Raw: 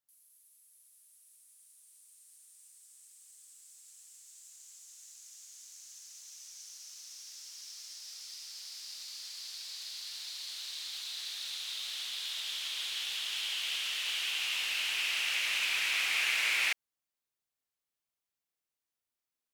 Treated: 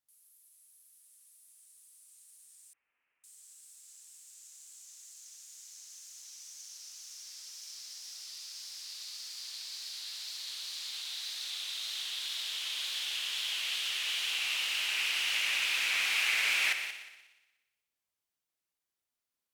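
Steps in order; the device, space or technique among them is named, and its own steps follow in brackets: multi-head tape echo (multi-head echo 60 ms, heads all three, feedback 44%, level -13 dB; wow and flutter); 2.73–3.24 steep low-pass 2700 Hz 72 dB/oct

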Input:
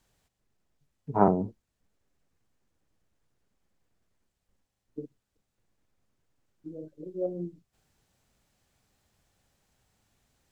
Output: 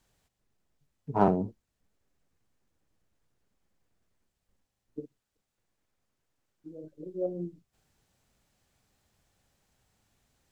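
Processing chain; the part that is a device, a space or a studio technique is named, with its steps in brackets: parallel distortion (in parallel at -8 dB: hard clip -19.5 dBFS, distortion -7 dB); 5–6.84 on the sum: low shelf 370 Hz -6 dB; gain -3.5 dB

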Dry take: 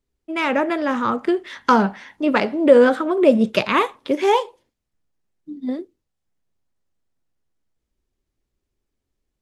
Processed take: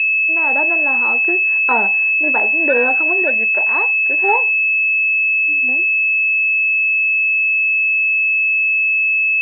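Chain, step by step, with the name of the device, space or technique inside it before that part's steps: toy sound module (decimation joined by straight lines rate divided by 8×; pulse-width modulation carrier 2600 Hz; speaker cabinet 510–3500 Hz, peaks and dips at 540 Hz -7 dB, 800 Hz +5 dB, 1200 Hz -9 dB, 1700 Hz +6 dB, 2500 Hz +10 dB); 3.22–4.24 low shelf 370 Hz -10 dB; gain +2 dB

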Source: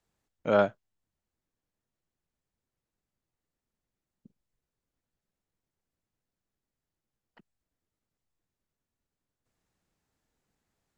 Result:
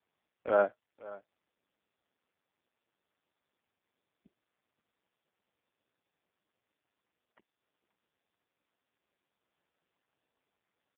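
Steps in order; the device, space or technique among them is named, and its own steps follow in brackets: satellite phone (BPF 310–3000 Hz; echo 0.528 s -19 dB; gain -1.5 dB; AMR-NB 5.15 kbps 8000 Hz)

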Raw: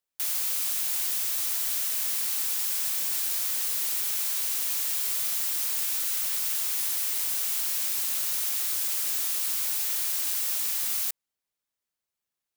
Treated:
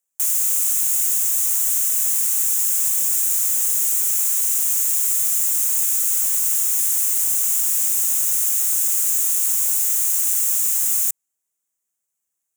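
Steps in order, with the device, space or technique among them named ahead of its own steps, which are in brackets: budget condenser microphone (HPF 84 Hz; resonant high shelf 5700 Hz +8 dB, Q 3)

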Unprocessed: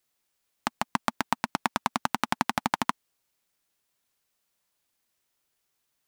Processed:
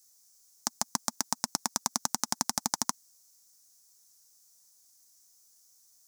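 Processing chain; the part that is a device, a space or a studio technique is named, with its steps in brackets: over-bright horn tweeter (resonant high shelf 4100 Hz +13.5 dB, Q 3; limiter -3.5 dBFS, peak gain reduction 8.5 dB)

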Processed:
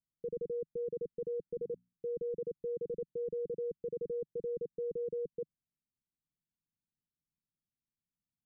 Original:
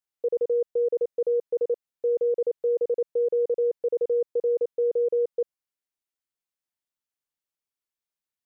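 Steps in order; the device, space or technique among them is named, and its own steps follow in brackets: the neighbour's flat through the wall (LPF 260 Hz 24 dB/oct; bell 160 Hz +6 dB 0.77 oct); 1.53–2.06 notches 60/120/180/240 Hz; gain +7.5 dB

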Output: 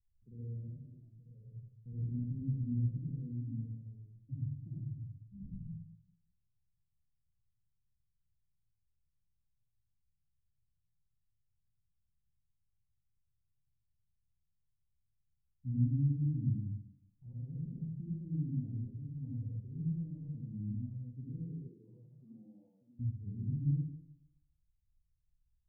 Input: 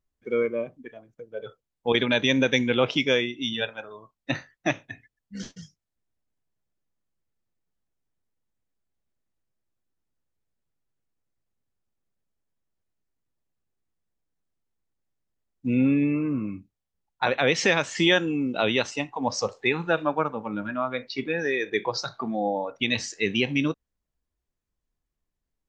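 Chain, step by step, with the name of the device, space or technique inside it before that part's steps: club heard from the street (limiter -18 dBFS, peak gain reduction 11 dB; LPF 130 Hz 24 dB/oct; reverb RT60 0.85 s, pre-delay 60 ms, DRR -6.5 dB); 21.68–22.99 HPF 230 Hz -> 710 Hz 12 dB/oct; gain +1 dB

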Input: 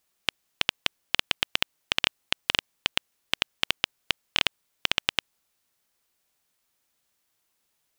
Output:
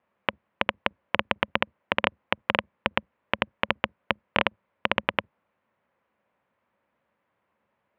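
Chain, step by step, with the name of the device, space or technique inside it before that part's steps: sub-octave bass pedal (octaver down 2 oct, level -3 dB; speaker cabinet 77–2200 Hz, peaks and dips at 210 Hz +8 dB, 550 Hz +9 dB, 1000 Hz +6 dB); gain +5.5 dB

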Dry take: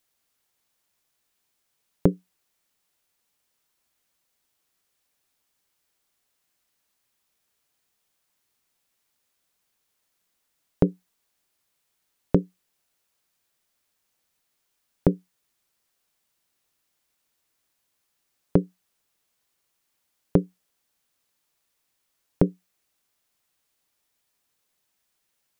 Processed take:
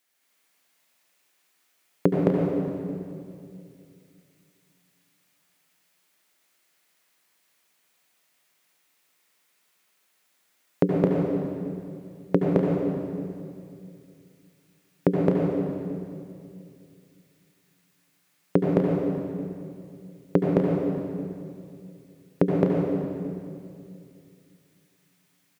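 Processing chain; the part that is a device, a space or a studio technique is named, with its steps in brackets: stadium PA (HPF 180 Hz 12 dB/oct; bell 2000 Hz +5.5 dB 0.81 oct; loudspeakers at several distances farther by 74 m -1 dB, 85 m -9 dB; reverb RT60 2.4 s, pre-delay 68 ms, DRR -2 dB)

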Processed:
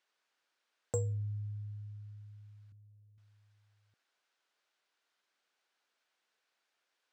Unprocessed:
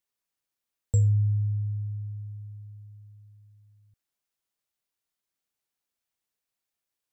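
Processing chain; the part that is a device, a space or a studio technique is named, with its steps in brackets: intercom (BPF 400–4400 Hz; bell 1500 Hz +5.5 dB 0.3 oct; soft clip -32 dBFS, distortion -22 dB); 2.72–3.18 steep low-pass 540 Hz; gain +10 dB

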